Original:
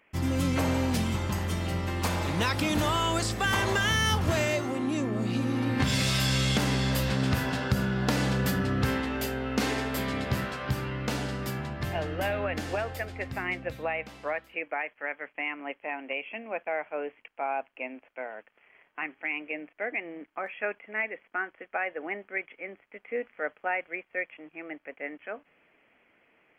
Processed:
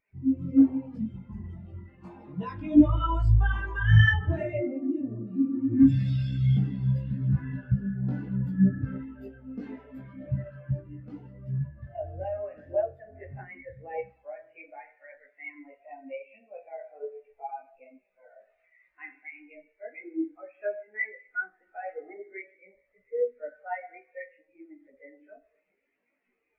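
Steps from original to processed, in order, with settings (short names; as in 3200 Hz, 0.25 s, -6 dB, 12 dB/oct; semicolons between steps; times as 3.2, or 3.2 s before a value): zero-crossing step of -35 dBFS; 18.35–19.12 dynamic EQ 2100 Hz, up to +5 dB, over -44 dBFS, Q 0.94; spring tank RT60 1.3 s, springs 37 ms, chirp 55 ms, DRR 3 dB; chorus voices 4, 0.85 Hz, delay 18 ms, depth 3.5 ms; spectral expander 2.5:1; gain +5.5 dB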